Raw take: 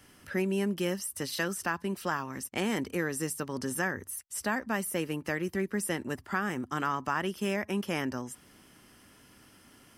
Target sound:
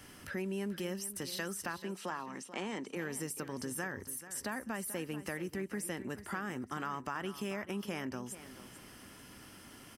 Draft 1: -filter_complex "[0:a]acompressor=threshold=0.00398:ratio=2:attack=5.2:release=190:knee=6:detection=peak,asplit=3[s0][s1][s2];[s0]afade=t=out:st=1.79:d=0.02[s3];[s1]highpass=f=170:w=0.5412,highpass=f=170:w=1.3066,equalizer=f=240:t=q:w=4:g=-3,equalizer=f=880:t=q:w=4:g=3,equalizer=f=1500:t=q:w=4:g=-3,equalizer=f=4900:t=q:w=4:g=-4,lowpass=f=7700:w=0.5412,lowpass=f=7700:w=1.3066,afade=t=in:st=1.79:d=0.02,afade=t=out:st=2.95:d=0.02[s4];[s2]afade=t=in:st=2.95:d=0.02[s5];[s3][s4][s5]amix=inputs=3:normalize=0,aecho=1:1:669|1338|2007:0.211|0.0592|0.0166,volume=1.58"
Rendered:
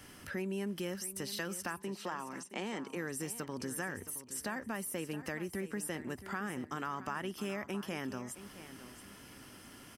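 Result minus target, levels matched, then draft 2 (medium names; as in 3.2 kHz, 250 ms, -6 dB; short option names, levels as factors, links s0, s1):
echo 233 ms late
-filter_complex "[0:a]acompressor=threshold=0.00398:ratio=2:attack=5.2:release=190:knee=6:detection=peak,asplit=3[s0][s1][s2];[s0]afade=t=out:st=1.79:d=0.02[s3];[s1]highpass=f=170:w=0.5412,highpass=f=170:w=1.3066,equalizer=f=240:t=q:w=4:g=-3,equalizer=f=880:t=q:w=4:g=3,equalizer=f=1500:t=q:w=4:g=-3,equalizer=f=4900:t=q:w=4:g=-4,lowpass=f=7700:w=0.5412,lowpass=f=7700:w=1.3066,afade=t=in:st=1.79:d=0.02,afade=t=out:st=2.95:d=0.02[s4];[s2]afade=t=in:st=2.95:d=0.02[s5];[s3][s4][s5]amix=inputs=3:normalize=0,aecho=1:1:436|872|1308:0.211|0.0592|0.0166,volume=1.58"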